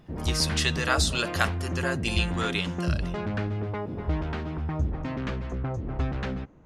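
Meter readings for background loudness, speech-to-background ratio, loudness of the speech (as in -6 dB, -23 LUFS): -31.0 LUFS, 3.0 dB, -28.0 LUFS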